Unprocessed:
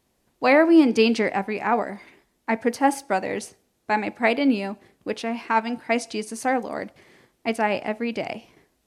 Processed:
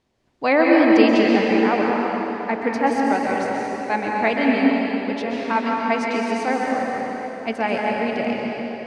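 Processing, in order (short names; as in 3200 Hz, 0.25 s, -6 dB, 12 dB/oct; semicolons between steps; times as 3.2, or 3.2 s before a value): LPF 5100 Hz 12 dB/oct; plate-style reverb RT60 3.8 s, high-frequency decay 0.8×, pre-delay 0.115 s, DRR -2.5 dB; gain -1 dB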